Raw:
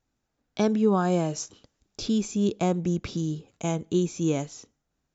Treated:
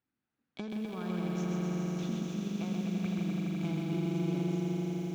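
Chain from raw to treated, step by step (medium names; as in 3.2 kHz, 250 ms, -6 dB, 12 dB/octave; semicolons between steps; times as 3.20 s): median filter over 9 samples; high-pass 200 Hz 12 dB/octave; peaking EQ 620 Hz -13.5 dB 1.9 oct; compression 10:1, threshold -37 dBFS, peak gain reduction 12.5 dB; distance through air 140 m; on a send: echo with a slow build-up 84 ms, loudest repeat 5, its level -6 dB; on the sum: bit-crushed delay 129 ms, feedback 55%, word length 10-bit, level -3.5 dB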